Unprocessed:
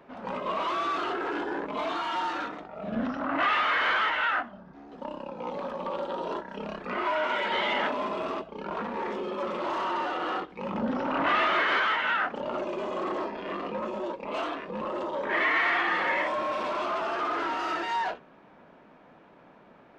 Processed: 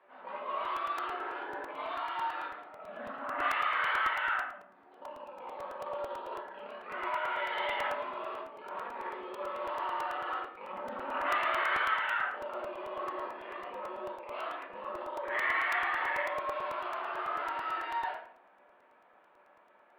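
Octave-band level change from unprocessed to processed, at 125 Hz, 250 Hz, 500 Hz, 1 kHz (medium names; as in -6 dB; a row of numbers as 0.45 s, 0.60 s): under -15 dB, -16.0 dB, -7.5 dB, -5.0 dB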